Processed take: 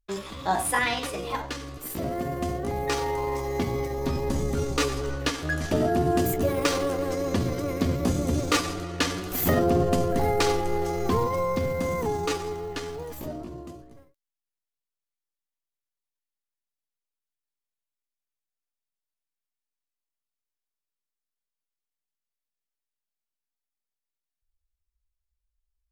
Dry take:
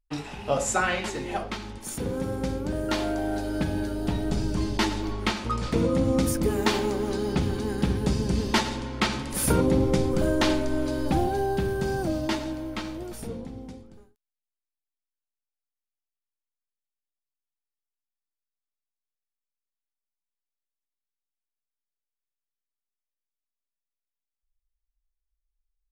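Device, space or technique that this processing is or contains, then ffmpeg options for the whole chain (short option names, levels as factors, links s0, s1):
chipmunk voice: -af "asetrate=58866,aresample=44100,atempo=0.749154"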